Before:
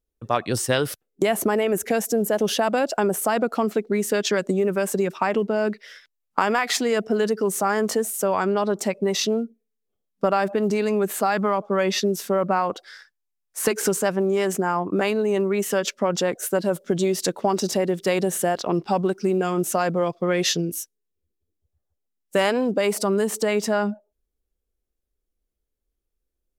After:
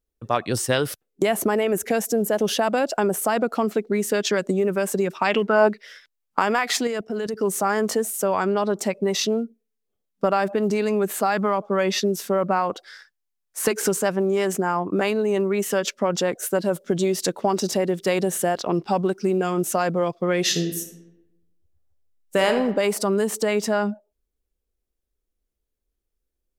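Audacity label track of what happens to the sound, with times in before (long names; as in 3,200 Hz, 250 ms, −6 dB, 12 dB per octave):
5.240000	5.670000	parametric band 4,100 Hz → 780 Hz +15 dB 1.2 octaves
6.870000	7.410000	output level in coarse steps of 13 dB
20.410000	22.500000	thrown reverb, RT60 0.98 s, DRR 6 dB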